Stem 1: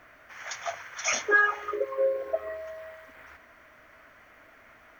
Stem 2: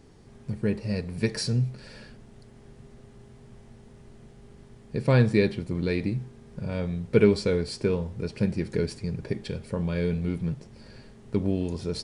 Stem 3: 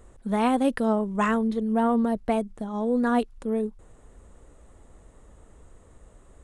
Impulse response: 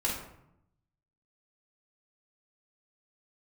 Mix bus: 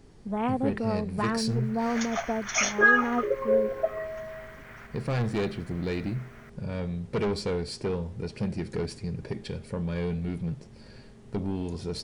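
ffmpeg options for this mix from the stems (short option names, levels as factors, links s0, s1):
-filter_complex "[0:a]adelay=1500,volume=1.26[s0];[1:a]asoftclip=type=tanh:threshold=0.075,volume=0.891[s1];[2:a]afwtdn=0.02,volume=0.531[s2];[s0][s1][s2]amix=inputs=3:normalize=0"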